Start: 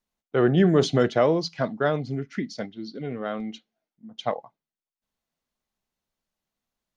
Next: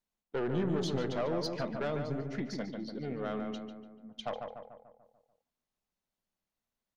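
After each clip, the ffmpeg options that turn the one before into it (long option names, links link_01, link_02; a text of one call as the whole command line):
ffmpeg -i in.wav -filter_complex "[0:a]acompressor=threshold=-20dB:ratio=6,aeval=exprs='(tanh(12.6*val(0)+0.25)-tanh(0.25))/12.6':channel_layout=same,asplit=2[link_01][link_02];[link_02]adelay=146,lowpass=frequency=1900:poles=1,volume=-4.5dB,asplit=2[link_03][link_04];[link_04]adelay=146,lowpass=frequency=1900:poles=1,volume=0.55,asplit=2[link_05][link_06];[link_06]adelay=146,lowpass=frequency=1900:poles=1,volume=0.55,asplit=2[link_07][link_08];[link_08]adelay=146,lowpass=frequency=1900:poles=1,volume=0.55,asplit=2[link_09][link_10];[link_10]adelay=146,lowpass=frequency=1900:poles=1,volume=0.55,asplit=2[link_11][link_12];[link_12]adelay=146,lowpass=frequency=1900:poles=1,volume=0.55,asplit=2[link_13][link_14];[link_14]adelay=146,lowpass=frequency=1900:poles=1,volume=0.55[link_15];[link_03][link_05][link_07][link_09][link_11][link_13][link_15]amix=inputs=7:normalize=0[link_16];[link_01][link_16]amix=inputs=2:normalize=0,volume=-5.5dB" out.wav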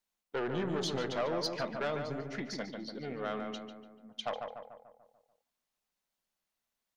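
ffmpeg -i in.wav -af "lowshelf=frequency=460:gain=-10,volume=4dB" out.wav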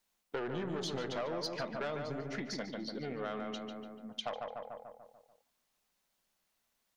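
ffmpeg -i in.wav -af "acompressor=threshold=-47dB:ratio=2.5,volume=7dB" out.wav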